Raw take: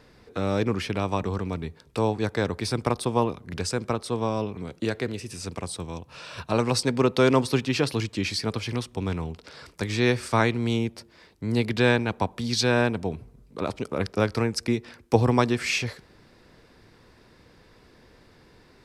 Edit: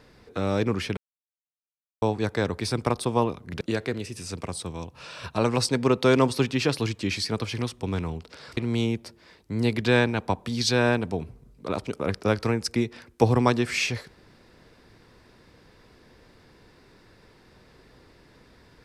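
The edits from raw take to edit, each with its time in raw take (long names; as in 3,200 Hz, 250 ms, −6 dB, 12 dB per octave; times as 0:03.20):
0:00.97–0:02.02: silence
0:03.61–0:04.75: remove
0:09.71–0:10.49: remove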